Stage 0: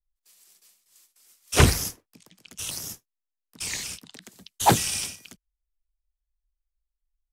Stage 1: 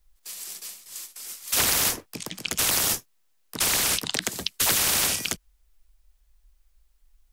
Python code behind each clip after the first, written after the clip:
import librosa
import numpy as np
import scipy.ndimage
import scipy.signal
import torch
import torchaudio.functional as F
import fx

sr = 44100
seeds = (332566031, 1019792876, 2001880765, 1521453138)

y = fx.spectral_comp(x, sr, ratio=10.0)
y = y * librosa.db_to_amplitude(-2.5)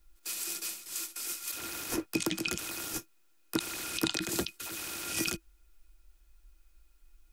y = fx.over_compress(x, sr, threshold_db=-32.0, ratio=-1.0)
y = fx.small_body(y, sr, hz=(330.0, 1400.0, 2500.0), ring_ms=90, db=16)
y = y * librosa.db_to_amplitude(-5.0)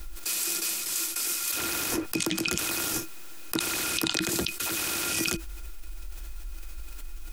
y = fx.env_flatten(x, sr, amount_pct=70)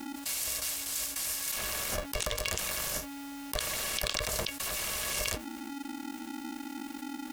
y = x * np.sign(np.sin(2.0 * np.pi * 280.0 * np.arange(len(x)) / sr))
y = y * librosa.db_to_amplitude(-4.5)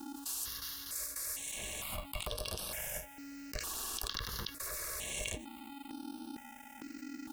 y = fx.phaser_held(x, sr, hz=2.2, low_hz=570.0, high_hz=7000.0)
y = y * librosa.db_to_amplitude(-4.0)